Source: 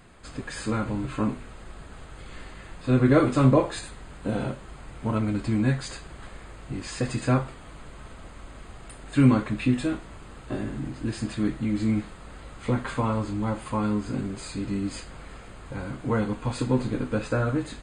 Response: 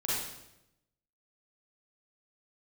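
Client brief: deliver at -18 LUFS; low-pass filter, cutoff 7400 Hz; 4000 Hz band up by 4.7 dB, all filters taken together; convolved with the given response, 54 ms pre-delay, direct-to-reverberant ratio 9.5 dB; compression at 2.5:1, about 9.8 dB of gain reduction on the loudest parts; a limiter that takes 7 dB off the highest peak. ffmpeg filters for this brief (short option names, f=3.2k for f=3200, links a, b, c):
-filter_complex "[0:a]lowpass=7.4k,equalizer=f=4k:t=o:g=6,acompressor=threshold=-28dB:ratio=2.5,alimiter=limit=-23dB:level=0:latency=1,asplit=2[a][b];[1:a]atrim=start_sample=2205,adelay=54[c];[b][c]afir=irnorm=-1:irlink=0,volume=-16.5dB[d];[a][d]amix=inputs=2:normalize=0,volume=16dB"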